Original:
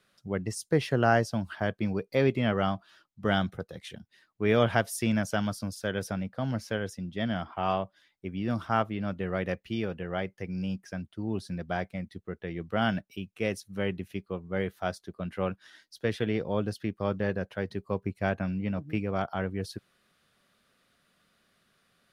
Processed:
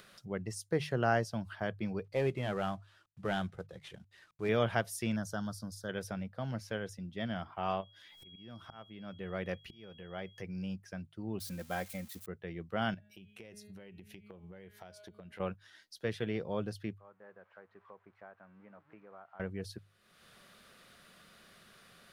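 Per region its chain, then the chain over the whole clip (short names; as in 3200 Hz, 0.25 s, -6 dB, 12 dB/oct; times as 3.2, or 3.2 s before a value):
2.04–4.49 CVSD 64 kbps + LPF 3600 Hz 6 dB/oct + notch 230 Hz, Q 5.7
5.16–5.89 Butterworth band-stop 2400 Hz, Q 1.2 + bell 600 Hz -4.5 dB 1.8 oct
7.8–10.41 upward compressor, threshold -33 dBFS + auto swell 0.766 s + whine 3300 Hz -55 dBFS
11.4–12.26 switching spikes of -34.5 dBFS + comb 3.8 ms, depth 57%
12.94–15.4 de-hum 208.1 Hz, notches 22 + compressor 8:1, threshold -43 dBFS + bell 1200 Hz -6 dB 0.38 oct
16.98–19.4 switching spikes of -27 dBFS + LPF 1300 Hz 24 dB/oct + differentiator
whole clip: bell 270 Hz -5.5 dB 0.3 oct; notches 50/100/150 Hz; upward compressor, threshold -39 dBFS; gain -6 dB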